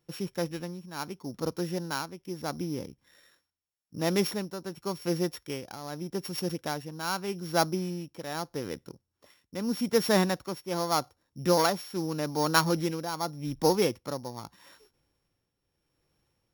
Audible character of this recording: a buzz of ramps at a fixed pitch in blocks of 8 samples; tremolo triangle 0.82 Hz, depth 70%

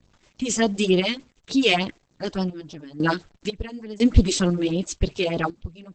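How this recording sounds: phasing stages 4, 3.4 Hz, lowest notch 120–2200 Hz; a quantiser's noise floor 10-bit, dither none; random-step tremolo 2 Hz, depth 90%; Opus

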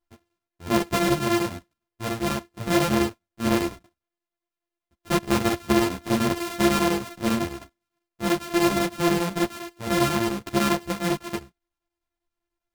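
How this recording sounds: a buzz of ramps at a fixed pitch in blocks of 128 samples; chopped level 10 Hz, depth 65%, duty 80%; a shimmering, thickened sound

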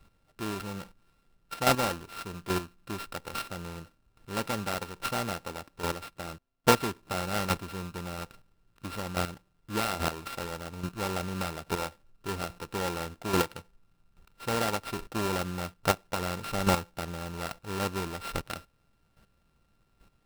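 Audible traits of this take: a buzz of ramps at a fixed pitch in blocks of 32 samples; chopped level 1.2 Hz, depth 65%, duty 10%; aliases and images of a low sample rate 6.6 kHz, jitter 20%

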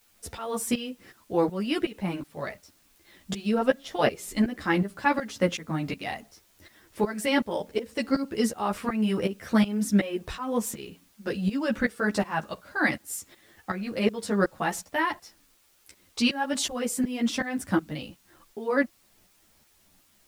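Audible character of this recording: tremolo saw up 2.7 Hz, depth 90%; a quantiser's noise floor 12-bit, dither triangular; a shimmering, thickened sound

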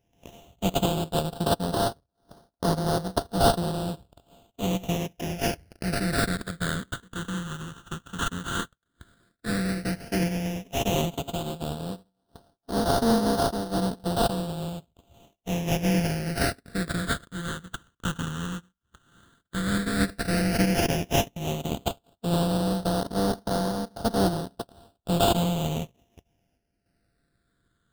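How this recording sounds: a buzz of ramps at a fixed pitch in blocks of 64 samples; random-step tremolo; aliases and images of a low sample rate 2.2 kHz, jitter 20%; phasing stages 8, 0.095 Hz, lowest notch 670–2400 Hz

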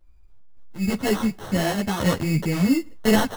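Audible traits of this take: a quantiser's noise floor 12-bit, dither none; random-step tremolo; aliases and images of a low sample rate 2.4 kHz, jitter 0%; a shimmering, thickened sound

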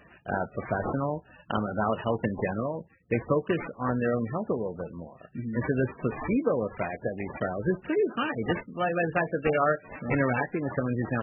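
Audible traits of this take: aliases and images of a low sample rate 4.4 kHz, jitter 20%; MP3

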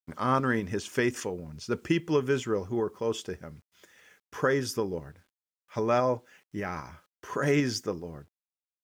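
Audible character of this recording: tremolo saw up 5 Hz, depth 30%; a quantiser's noise floor 12-bit, dither none

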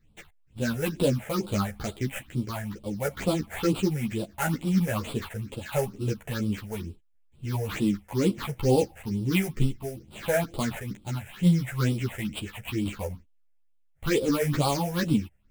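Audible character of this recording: aliases and images of a low sample rate 5.5 kHz, jitter 20%; phasing stages 6, 2.2 Hz, lowest notch 280–1800 Hz; tremolo saw down 0.7 Hz, depth 40%; a shimmering, thickened sound

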